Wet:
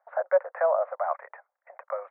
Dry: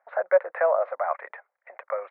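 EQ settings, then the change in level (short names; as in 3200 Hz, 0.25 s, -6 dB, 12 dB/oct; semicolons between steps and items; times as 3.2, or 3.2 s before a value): HPF 540 Hz 24 dB/oct; LPF 1300 Hz 12 dB/oct; 0.0 dB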